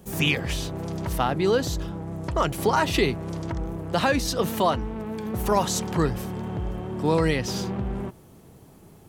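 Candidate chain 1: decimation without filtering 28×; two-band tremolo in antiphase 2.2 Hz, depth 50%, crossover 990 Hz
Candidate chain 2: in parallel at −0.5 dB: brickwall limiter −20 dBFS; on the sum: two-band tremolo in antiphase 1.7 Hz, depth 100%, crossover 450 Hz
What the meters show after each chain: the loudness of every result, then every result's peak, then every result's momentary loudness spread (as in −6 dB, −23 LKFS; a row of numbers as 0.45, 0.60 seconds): −28.0, −27.0 LKFS; −9.5, −8.5 dBFS; 10, 9 LU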